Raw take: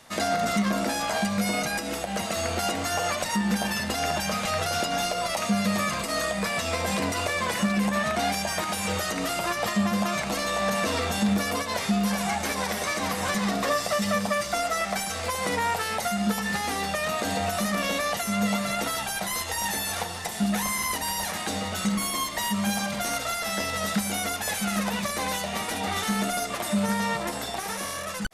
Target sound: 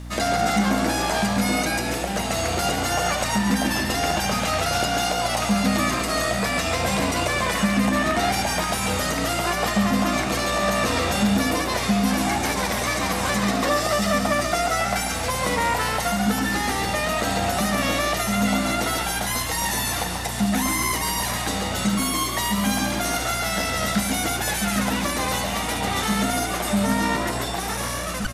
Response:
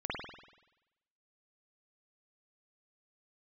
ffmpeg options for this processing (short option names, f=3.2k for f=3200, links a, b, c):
-filter_complex "[0:a]aeval=exprs='val(0)+0.0141*(sin(2*PI*60*n/s)+sin(2*PI*2*60*n/s)/2+sin(2*PI*3*60*n/s)/3+sin(2*PI*4*60*n/s)/4+sin(2*PI*5*60*n/s)/5)':c=same,acrusher=bits=10:mix=0:aa=0.000001,asplit=7[a][b][c][d][e][f][g];[b]adelay=138,afreqshift=58,volume=-6.5dB[h];[c]adelay=276,afreqshift=116,volume=-12.9dB[i];[d]adelay=414,afreqshift=174,volume=-19.3dB[j];[e]adelay=552,afreqshift=232,volume=-25.6dB[k];[f]adelay=690,afreqshift=290,volume=-32dB[l];[g]adelay=828,afreqshift=348,volume=-38.4dB[m];[a][h][i][j][k][l][m]amix=inputs=7:normalize=0,volume=3dB"